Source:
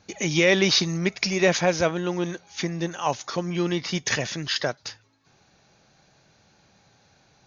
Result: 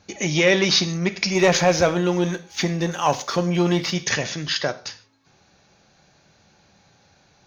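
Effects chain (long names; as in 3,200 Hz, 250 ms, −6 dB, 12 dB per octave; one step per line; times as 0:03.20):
0:01.35–0:03.91: leveller curve on the samples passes 1
reverb whose tail is shaped and stops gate 170 ms falling, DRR 10.5 dB
saturating transformer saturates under 560 Hz
level +2 dB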